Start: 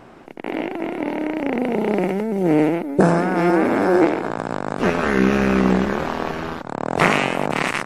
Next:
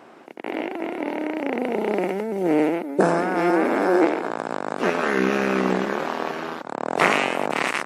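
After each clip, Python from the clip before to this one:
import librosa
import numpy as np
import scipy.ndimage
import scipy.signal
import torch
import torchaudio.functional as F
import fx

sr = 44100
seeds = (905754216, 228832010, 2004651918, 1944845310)

y = scipy.signal.sosfilt(scipy.signal.butter(2, 270.0, 'highpass', fs=sr, output='sos'), x)
y = y * librosa.db_to_amplitude(-1.5)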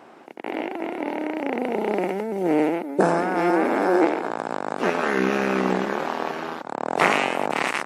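y = fx.peak_eq(x, sr, hz=830.0, db=3.0, octaves=0.34)
y = y * librosa.db_to_amplitude(-1.0)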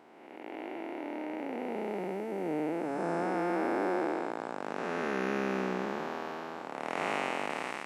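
y = fx.spec_blur(x, sr, span_ms=406.0)
y = y * librosa.db_to_amplitude(-8.5)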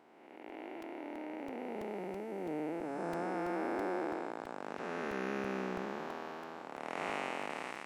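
y = fx.buffer_crackle(x, sr, first_s=0.49, period_s=0.33, block=128, kind='repeat')
y = y * librosa.db_to_amplitude(-5.5)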